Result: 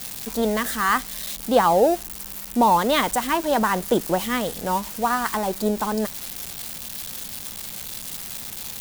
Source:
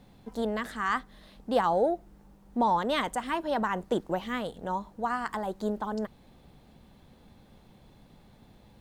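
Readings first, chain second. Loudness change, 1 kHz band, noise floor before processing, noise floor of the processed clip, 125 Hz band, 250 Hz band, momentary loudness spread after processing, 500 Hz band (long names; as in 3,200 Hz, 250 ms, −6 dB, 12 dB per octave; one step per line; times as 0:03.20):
+7.0 dB, +8.0 dB, −57 dBFS, −36 dBFS, +8.0 dB, +8.0 dB, 13 LU, +8.0 dB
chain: spike at every zero crossing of −28.5 dBFS
level +8 dB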